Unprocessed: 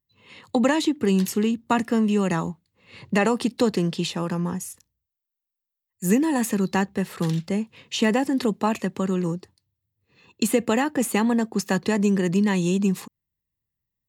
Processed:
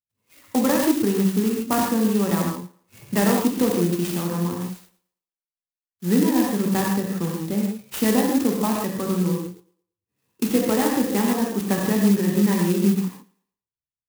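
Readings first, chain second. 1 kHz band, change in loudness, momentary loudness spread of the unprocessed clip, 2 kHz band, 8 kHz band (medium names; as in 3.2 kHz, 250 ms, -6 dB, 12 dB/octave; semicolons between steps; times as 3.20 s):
+0.5 dB, +1.5 dB, 7 LU, -2.0 dB, +2.5 dB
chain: low-pass 5.7 kHz 12 dB/octave; spectral noise reduction 18 dB; peaking EQ 160 Hz +3 dB 1.4 oct; thinning echo 112 ms, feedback 32%, high-pass 240 Hz, level -20.5 dB; gated-style reverb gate 180 ms flat, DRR -1.5 dB; sampling jitter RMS 0.081 ms; trim -3 dB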